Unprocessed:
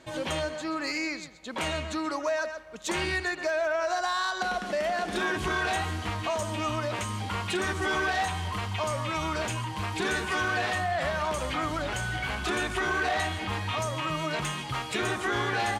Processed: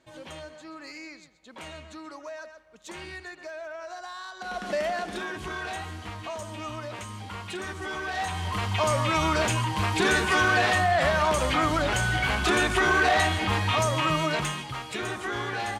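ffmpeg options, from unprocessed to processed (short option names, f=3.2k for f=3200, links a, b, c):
-af "volume=13.5dB,afade=t=in:st=4.39:d=0.35:silence=0.237137,afade=t=out:st=4.74:d=0.52:silence=0.421697,afade=t=in:st=8.04:d=0.88:silence=0.251189,afade=t=out:st=14.11:d=0.62:silence=0.354813"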